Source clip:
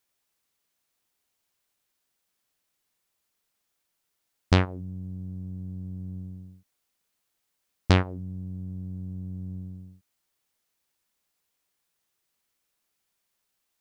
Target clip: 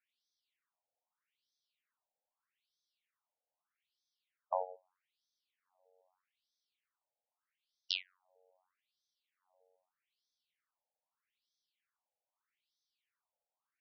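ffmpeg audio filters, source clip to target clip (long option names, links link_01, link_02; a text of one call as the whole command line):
ffmpeg -i in.wav -af "afftfilt=real='re*between(b*sr/1024,620*pow(4600/620,0.5+0.5*sin(2*PI*0.8*pts/sr))/1.41,620*pow(4600/620,0.5+0.5*sin(2*PI*0.8*pts/sr))*1.41)':imag='im*between(b*sr/1024,620*pow(4600/620,0.5+0.5*sin(2*PI*0.8*pts/sr))/1.41,620*pow(4600/620,0.5+0.5*sin(2*PI*0.8*pts/sr))*1.41)':win_size=1024:overlap=0.75,volume=-2.5dB" out.wav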